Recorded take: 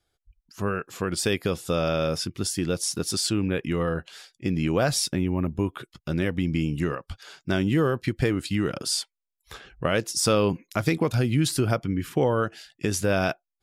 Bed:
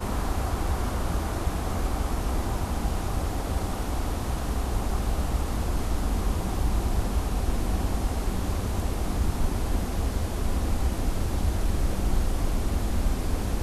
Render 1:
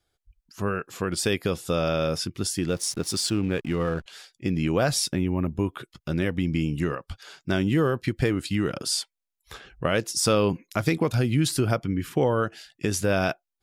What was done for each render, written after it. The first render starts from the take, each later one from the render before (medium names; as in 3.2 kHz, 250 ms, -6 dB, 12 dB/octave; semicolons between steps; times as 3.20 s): 2.68–4.06 s: hysteresis with a dead band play -37.5 dBFS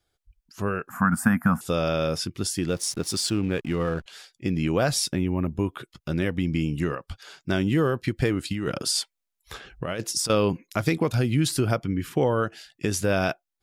0.89–1.61 s: FFT filter 100 Hz 0 dB, 240 Hz +14 dB, 390 Hz -26 dB, 730 Hz +8 dB, 1.5 kHz +13 dB, 2.2 kHz -6 dB, 3.8 kHz -26 dB, 7.9 kHz -4 dB, 14 kHz +6 dB; 8.51–10.30 s: compressor with a negative ratio -26 dBFS, ratio -0.5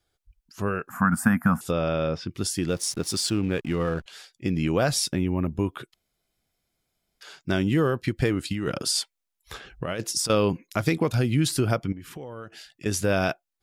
1.71–2.30 s: distance through air 220 m; 5.94–7.21 s: room tone; 11.92–12.86 s: compression 4:1, threshold -38 dBFS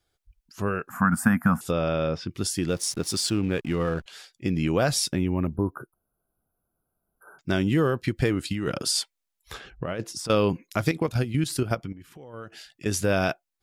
5.56–7.39 s: brick-wall FIR band-stop 1.6–9.5 kHz; 9.70–10.30 s: treble shelf 3.1 kHz -11 dB; 10.91–12.34 s: level held to a coarse grid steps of 11 dB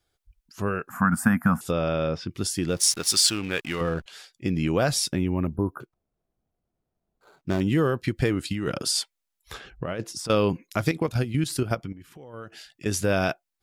2.80–3.81 s: tilt shelf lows -8 dB, about 680 Hz; 5.80–7.61 s: median filter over 25 samples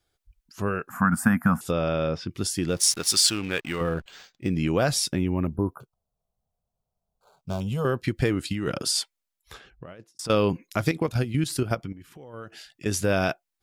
3.58–4.55 s: decimation joined by straight lines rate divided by 4×; 5.73–7.85 s: static phaser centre 770 Hz, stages 4; 9.01–10.19 s: fade out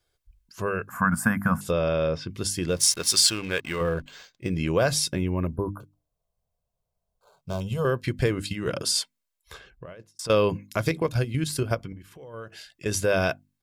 hum notches 50/100/150/200/250/300 Hz; comb 1.9 ms, depth 34%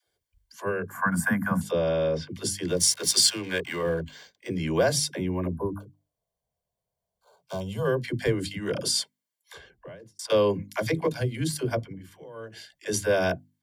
comb of notches 1.3 kHz; phase dispersion lows, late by 71 ms, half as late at 340 Hz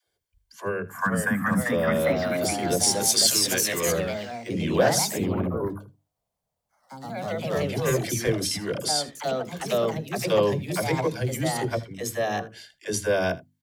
ever faster or slower copies 531 ms, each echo +2 st, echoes 3; delay 79 ms -19.5 dB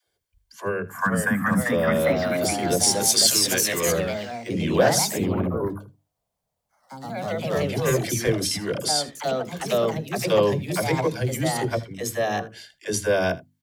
trim +2 dB